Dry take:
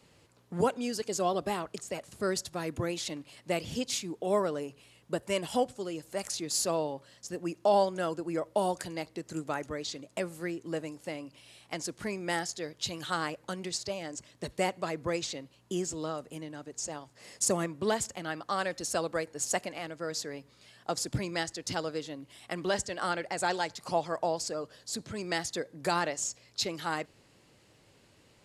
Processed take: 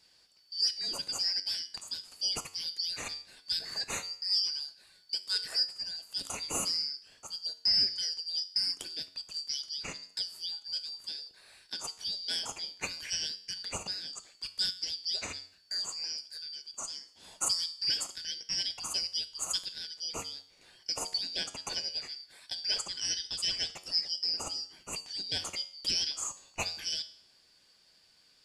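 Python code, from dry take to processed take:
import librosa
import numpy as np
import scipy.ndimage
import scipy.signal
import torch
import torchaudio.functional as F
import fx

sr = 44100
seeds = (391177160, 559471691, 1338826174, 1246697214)

y = fx.band_shuffle(x, sr, order='4321')
y = fx.comb_fb(y, sr, f0_hz=92.0, decay_s=0.56, harmonics='all', damping=0.0, mix_pct=60)
y = y * librosa.db_to_amplitude(4.0)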